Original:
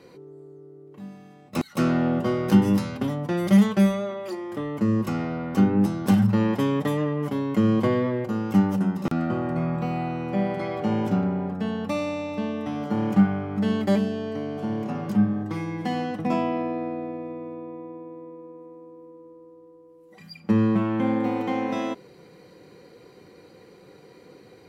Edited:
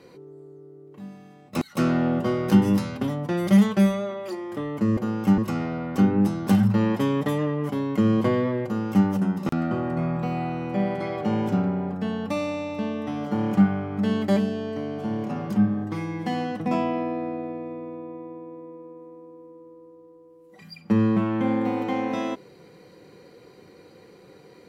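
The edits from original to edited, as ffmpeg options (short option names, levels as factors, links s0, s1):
-filter_complex "[0:a]asplit=3[s0][s1][s2];[s0]atrim=end=4.972[s3];[s1]atrim=start=8.238:end=8.652[s4];[s2]atrim=start=4.968[s5];[s3][s4]acrossfade=d=0.004:c1=hsin:c2=hsin[s6];[s6][s5]acrossfade=d=0.004:c1=hsin:c2=hsin"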